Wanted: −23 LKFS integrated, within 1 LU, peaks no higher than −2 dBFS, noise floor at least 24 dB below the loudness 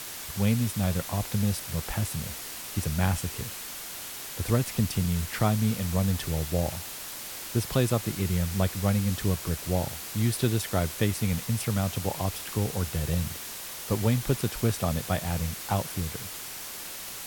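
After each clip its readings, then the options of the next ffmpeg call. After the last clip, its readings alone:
background noise floor −39 dBFS; target noise floor −53 dBFS; integrated loudness −29.0 LKFS; sample peak −10.5 dBFS; target loudness −23.0 LKFS
→ -af "afftdn=noise_reduction=14:noise_floor=-39"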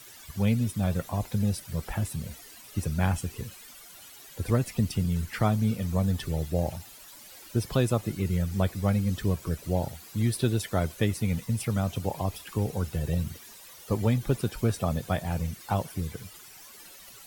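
background noise floor −49 dBFS; target noise floor −53 dBFS
→ -af "afftdn=noise_reduction=6:noise_floor=-49"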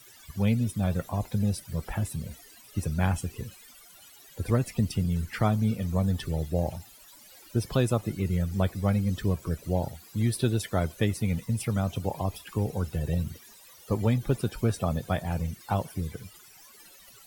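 background noise floor −53 dBFS; integrated loudness −29.0 LKFS; sample peak −10.5 dBFS; target loudness −23.0 LKFS
→ -af "volume=6dB"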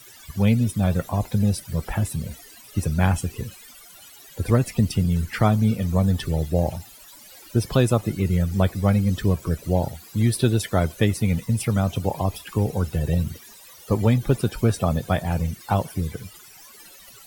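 integrated loudness −23.0 LKFS; sample peak −4.5 dBFS; background noise floor −47 dBFS

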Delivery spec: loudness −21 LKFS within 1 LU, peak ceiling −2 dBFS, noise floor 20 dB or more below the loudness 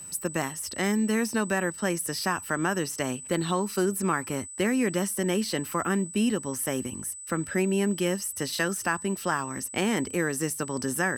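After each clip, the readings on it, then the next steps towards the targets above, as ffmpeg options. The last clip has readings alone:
interfering tone 8,000 Hz; level of the tone −39 dBFS; integrated loudness −28.0 LKFS; sample peak −11.5 dBFS; target loudness −21.0 LKFS
→ -af "bandreject=frequency=8000:width=30"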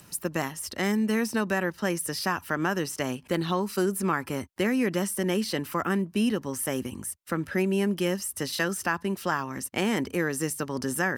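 interfering tone none found; integrated loudness −28.5 LKFS; sample peak −11.5 dBFS; target loudness −21.0 LKFS
→ -af "volume=7.5dB"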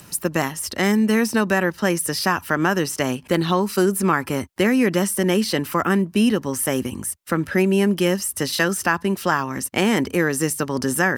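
integrated loudness −21.0 LKFS; sample peak −4.0 dBFS; background noise floor −46 dBFS

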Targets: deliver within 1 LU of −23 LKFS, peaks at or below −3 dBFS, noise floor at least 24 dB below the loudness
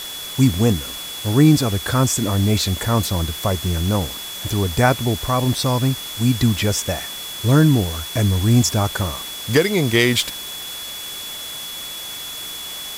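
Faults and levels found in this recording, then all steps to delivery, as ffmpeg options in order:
interfering tone 3,400 Hz; level of the tone −31 dBFS; background noise floor −31 dBFS; target noise floor −44 dBFS; integrated loudness −19.5 LKFS; sample peak −1.5 dBFS; target loudness −23.0 LKFS
→ -af "bandreject=frequency=3400:width=30"
-af "afftdn=noise_reduction=13:noise_floor=-31"
-af "volume=-3.5dB"

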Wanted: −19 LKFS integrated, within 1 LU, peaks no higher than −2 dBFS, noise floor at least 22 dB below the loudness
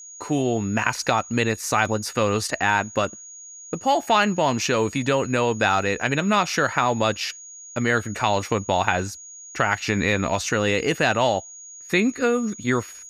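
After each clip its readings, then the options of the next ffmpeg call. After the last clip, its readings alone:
interfering tone 6,700 Hz; level of the tone −39 dBFS; integrated loudness −22.5 LKFS; sample peak −2.5 dBFS; target loudness −19.0 LKFS
→ -af "bandreject=frequency=6700:width=30"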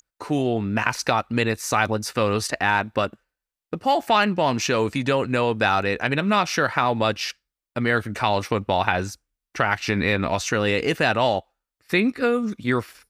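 interfering tone none found; integrated loudness −22.5 LKFS; sample peak −3.0 dBFS; target loudness −19.0 LKFS
→ -af "volume=3.5dB,alimiter=limit=-2dB:level=0:latency=1"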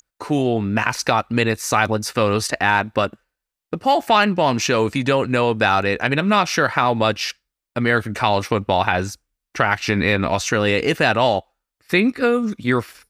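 integrated loudness −19.0 LKFS; sample peak −2.0 dBFS; background noise floor −85 dBFS

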